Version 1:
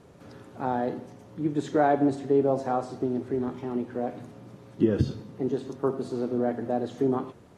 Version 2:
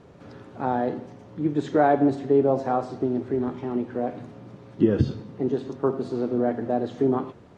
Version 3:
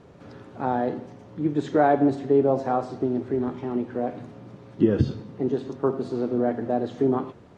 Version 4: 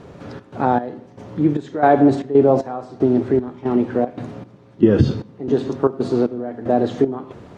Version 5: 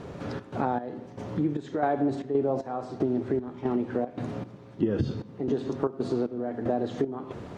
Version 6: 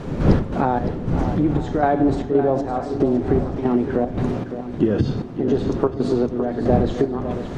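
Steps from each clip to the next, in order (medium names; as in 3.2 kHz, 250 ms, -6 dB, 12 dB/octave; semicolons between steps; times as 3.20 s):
Bessel low-pass 4.6 kHz, order 2; trim +3 dB
no audible change
in parallel at +0.5 dB: peak limiter -18 dBFS, peak gain reduction 11 dB; on the sum: trance gate "xxx.xx...xxx.." 115 bpm -12 dB; trim +3.5 dB
compression 3:1, threshold -27 dBFS, peak gain reduction 14.5 dB
wind noise 220 Hz -34 dBFS; shuffle delay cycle 934 ms, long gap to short 1.5:1, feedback 33%, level -10.5 dB; trim +7.5 dB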